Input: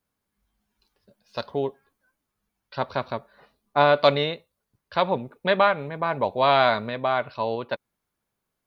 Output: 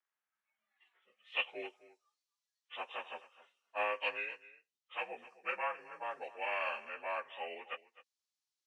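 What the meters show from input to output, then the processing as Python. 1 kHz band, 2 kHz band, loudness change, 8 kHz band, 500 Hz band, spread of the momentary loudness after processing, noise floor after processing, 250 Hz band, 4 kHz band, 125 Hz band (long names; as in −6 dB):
−17.5 dB, −10.0 dB, −16.0 dB, can't be measured, −20.5 dB, 12 LU, below −85 dBFS, −27.5 dB, −15.0 dB, below −40 dB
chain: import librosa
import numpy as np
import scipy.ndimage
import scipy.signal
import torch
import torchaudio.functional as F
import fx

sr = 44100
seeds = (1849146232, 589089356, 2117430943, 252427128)

y = fx.partial_stretch(x, sr, pct=86)
y = fx.noise_reduce_blind(y, sr, reduce_db=9)
y = scipy.signal.sosfilt(scipy.signal.butter(2, 310.0, 'highpass', fs=sr, output='sos'), y)
y = fx.rider(y, sr, range_db=3, speed_s=0.5)
y = fx.filter_sweep_bandpass(y, sr, from_hz=1700.0, to_hz=4600.0, start_s=0.99, end_s=1.8, q=1.9)
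y = y + 10.0 ** (-18.0 / 20.0) * np.pad(y, (int(258 * sr / 1000.0), 0))[:len(y)]
y = y * 10.0 ** (5.0 / 20.0)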